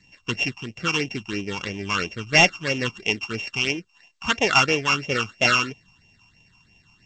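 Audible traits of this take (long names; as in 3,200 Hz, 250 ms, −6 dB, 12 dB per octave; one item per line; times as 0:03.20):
a buzz of ramps at a fixed pitch in blocks of 16 samples
phaser sweep stages 8, 3 Hz, lowest notch 520–1,400 Hz
G.722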